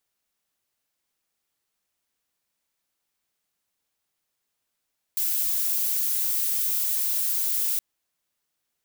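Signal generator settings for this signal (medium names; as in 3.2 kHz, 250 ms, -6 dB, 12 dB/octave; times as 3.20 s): noise violet, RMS -25 dBFS 2.62 s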